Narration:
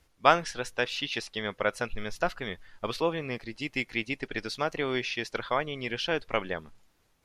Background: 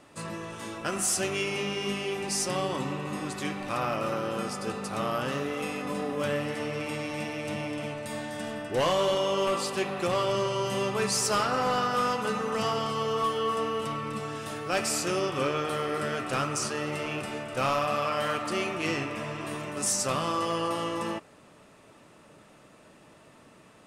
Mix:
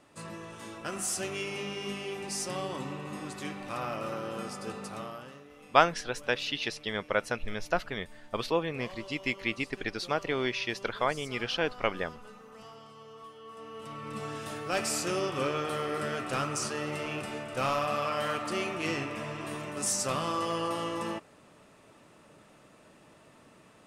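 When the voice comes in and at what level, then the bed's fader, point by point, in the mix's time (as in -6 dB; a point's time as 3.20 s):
5.50 s, -0.5 dB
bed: 4.87 s -5.5 dB
5.45 s -21 dB
13.42 s -21 dB
14.24 s -2.5 dB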